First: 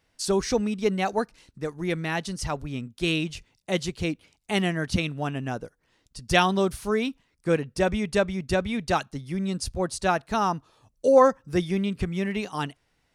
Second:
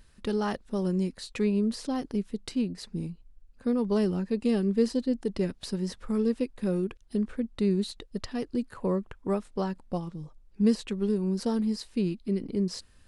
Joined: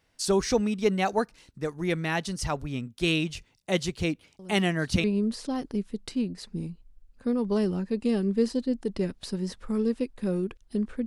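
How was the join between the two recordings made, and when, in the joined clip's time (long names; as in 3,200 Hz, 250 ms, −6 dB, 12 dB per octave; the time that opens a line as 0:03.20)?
first
0:04.39: mix in second from 0:00.79 0.65 s −16 dB
0:05.04: continue with second from 0:01.44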